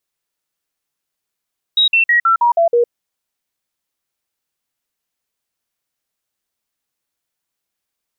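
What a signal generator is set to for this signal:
stepped sweep 3,810 Hz down, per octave 2, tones 7, 0.11 s, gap 0.05 s −9 dBFS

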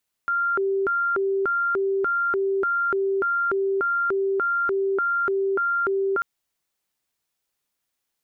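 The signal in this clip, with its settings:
siren hi-lo 390–1,390 Hz 1.7 per second sine −20 dBFS 5.94 s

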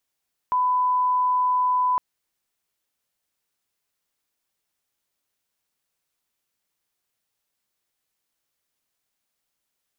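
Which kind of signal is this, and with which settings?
line-up tone −18 dBFS 1.46 s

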